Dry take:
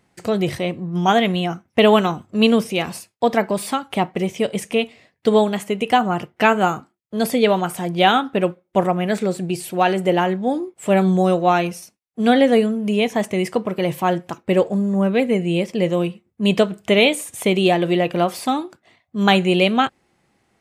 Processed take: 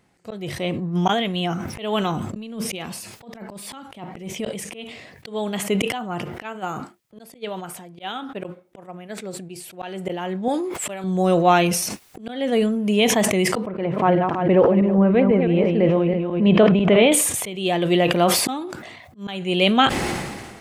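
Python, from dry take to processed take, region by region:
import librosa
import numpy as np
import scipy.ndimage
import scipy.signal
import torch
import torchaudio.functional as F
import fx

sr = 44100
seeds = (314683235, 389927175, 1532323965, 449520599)

y = fx.chain(x, sr, fx.peak_eq(hz=220.0, db=4.0, octaves=0.44),
    fx.over_compress(threshold_db=-20.0, ratio=-1.0), at=(2.21, 4.54))
y = fx.chain(y, sr, fx.low_shelf(hz=150.0, db=-4.5),
    fx.upward_expand(threshold_db=-26.0, expansion=2.5), at=(6.42, 9.72))
y = fx.chain(y, sr, fx.low_shelf(hz=460.0, db=-12.0),
    fx.env_flatten(amount_pct=50), at=(10.48, 11.04))
y = fx.chain(y, sr, fx.reverse_delay_fb(ms=165, feedback_pct=40, wet_db=-6),
    fx.lowpass(hz=1800.0, slope=12),
    fx.pre_swell(db_per_s=77.0), at=(13.66, 17.12))
y = fx.dynamic_eq(y, sr, hz=3200.0, q=4.8, threshold_db=-39.0, ratio=4.0, max_db=6)
y = fx.auto_swell(y, sr, attack_ms=490.0)
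y = fx.sustainer(y, sr, db_per_s=38.0)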